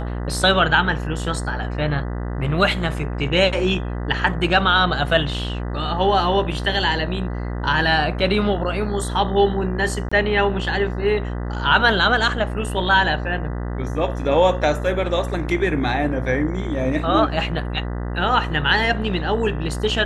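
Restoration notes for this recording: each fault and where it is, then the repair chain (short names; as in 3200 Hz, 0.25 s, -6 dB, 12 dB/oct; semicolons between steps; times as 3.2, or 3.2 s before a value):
buzz 60 Hz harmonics 33 -26 dBFS
10.09–10.12 gap 25 ms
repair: de-hum 60 Hz, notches 33; interpolate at 10.09, 25 ms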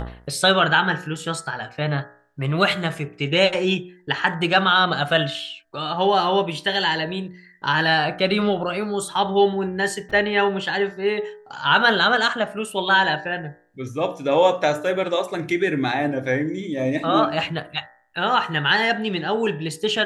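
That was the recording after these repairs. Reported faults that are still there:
none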